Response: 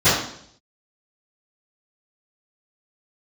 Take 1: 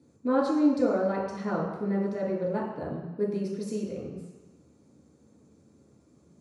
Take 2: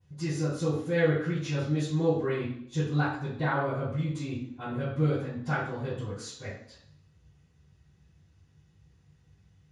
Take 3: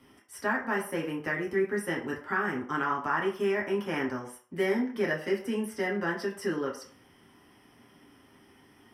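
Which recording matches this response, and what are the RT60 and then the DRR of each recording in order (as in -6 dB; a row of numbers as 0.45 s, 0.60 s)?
2; no single decay rate, 0.65 s, 0.50 s; -6.0 dB, -24.0 dB, -3.5 dB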